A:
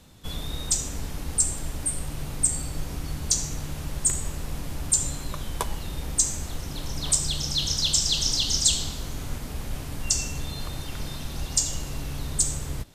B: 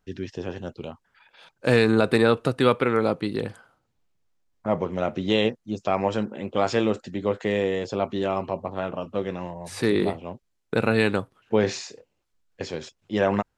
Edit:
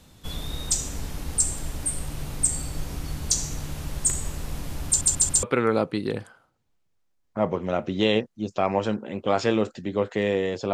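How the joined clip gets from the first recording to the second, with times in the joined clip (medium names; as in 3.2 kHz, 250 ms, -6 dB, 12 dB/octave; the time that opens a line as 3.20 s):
A
4.87 s: stutter in place 0.14 s, 4 plays
5.43 s: go over to B from 2.72 s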